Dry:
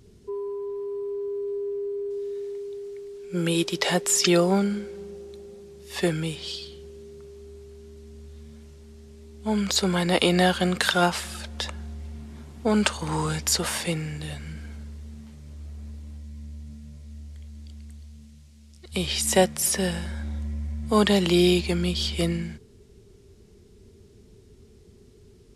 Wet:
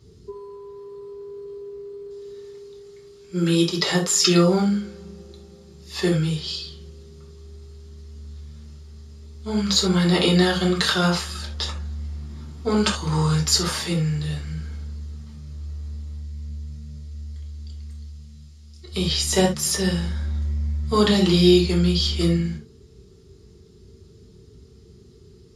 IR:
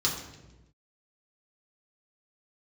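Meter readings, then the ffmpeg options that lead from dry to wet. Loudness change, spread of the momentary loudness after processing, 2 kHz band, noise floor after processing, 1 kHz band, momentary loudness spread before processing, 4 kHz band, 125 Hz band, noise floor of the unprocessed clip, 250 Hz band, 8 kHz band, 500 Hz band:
+4.0 dB, 21 LU, 0.0 dB, −49 dBFS, −0.5 dB, 22 LU, +4.0 dB, +6.5 dB, −53 dBFS, +4.0 dB, +1.5 dB, +1.0 dB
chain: -filter_complex "[1:a]atrim=start_sample=2205,atrim=end_sample=3969[link_01];[0:a][link_01]afir=irnorm=-1:irlink=0,volume=-7dB"

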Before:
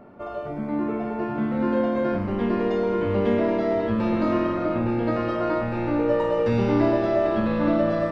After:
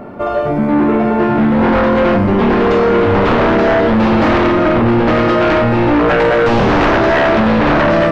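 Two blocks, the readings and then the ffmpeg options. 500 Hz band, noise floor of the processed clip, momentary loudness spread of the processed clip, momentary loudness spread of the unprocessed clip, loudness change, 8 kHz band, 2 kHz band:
+11.0 dB, −16 dBFS, 2 LU, 6 LU, +11.5 dB, can't be measured, +18.0 dB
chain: -af "aeval=exprs='0.398*sin(PI/2*4.47*val(0)/0.398)':channel_layout=same"

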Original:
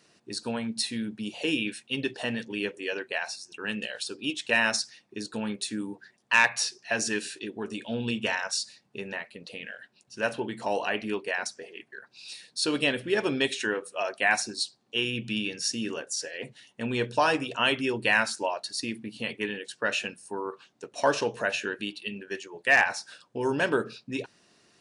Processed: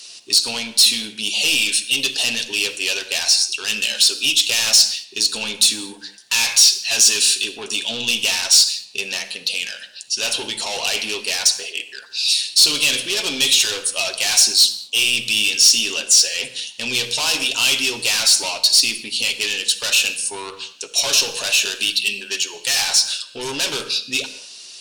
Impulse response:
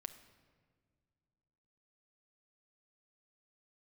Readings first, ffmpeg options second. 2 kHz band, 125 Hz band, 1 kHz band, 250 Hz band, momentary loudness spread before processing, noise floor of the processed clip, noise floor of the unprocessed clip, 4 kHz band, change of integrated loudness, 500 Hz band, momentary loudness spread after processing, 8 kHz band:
+5.5 dB, −3.0 dB, −1.5 dB, −3.5 dB, 14 LU, −42 dBFS, −67 dBFS, +18.5 dB, +12.5 dB, −2.0 dB, 12 LU, +20.5 dB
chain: -filter_complex "[0:a]asplit=2[link_01][link_02];[link_02]highpass=frequency=720:poles=1,volume=25dB,asoftclip=type=tanh:threshold=-10.5dB[link_03];[link_01][link_03]amix=inputs=2:normalize=0,lowpass=frequency=3600:poles=1,volume=-6dB,asoftclip=type=tanh:threshold=-13.5dB,aexciter=amount=10.7:drive=4.9:freq=2700[link_04];[1:a]atrim=start_sample=2205,afade=type=out:start_time=0.24:duration=0.01,atrim=end_sample=11025,asetrate=36603,aresample=44100[link_05];[link_04][link_05]afir=irnorm=-1:irlink=0,volume=-5.5dB"

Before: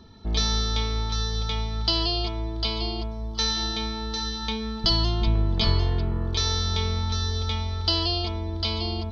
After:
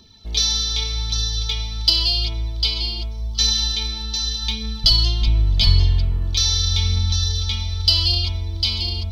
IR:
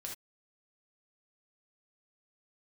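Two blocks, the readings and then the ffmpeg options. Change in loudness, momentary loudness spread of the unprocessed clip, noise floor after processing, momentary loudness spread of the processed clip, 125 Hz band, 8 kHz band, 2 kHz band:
+6.5 dB, 6 LU, −29 dBFS, 8 LU, +5.0 dB, can't be measured, +2.0 dB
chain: -af "asubboost=boost=4:cutoff=160,aphaser=in_gain=1:out_gain=1:delay=3.9:decay=0.34:speed=0.86:type=triangular,aexciter=amount=5.2:drive=4.2:freq=2200,volume=-6.5dB"

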